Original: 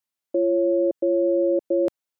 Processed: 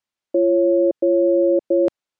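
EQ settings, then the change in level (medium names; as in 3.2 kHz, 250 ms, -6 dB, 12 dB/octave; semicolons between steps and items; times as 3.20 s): distance through air 71 m; +4.5 dB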